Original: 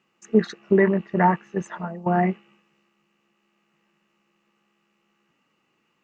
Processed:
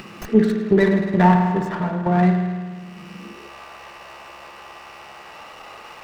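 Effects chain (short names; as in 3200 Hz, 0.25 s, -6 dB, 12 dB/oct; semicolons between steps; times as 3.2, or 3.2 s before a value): upward compressor, threshold -20 dBFS; spring tank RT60 1.6 s, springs 50 ms, chirp 65 ms, DRR 3 dB; high-pass sweep 100 Hz -> 660 Hz, 3.06–3.56; running maximum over 5 samples; gain +1 dB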